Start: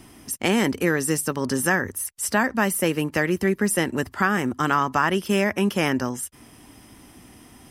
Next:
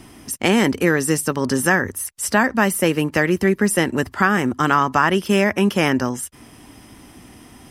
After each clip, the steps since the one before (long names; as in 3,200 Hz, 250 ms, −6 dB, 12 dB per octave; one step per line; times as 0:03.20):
high-shelf EQ 9,800 Hz −5 dB
level +4.5 dB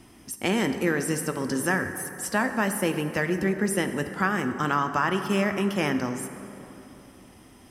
dense smooth reverb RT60 3.3 s, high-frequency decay 0.45×, DRR 7.5 dB
level −8.5 dB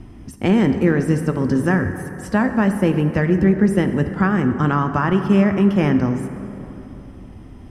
RIAA equalisation playback
level +3.5 dB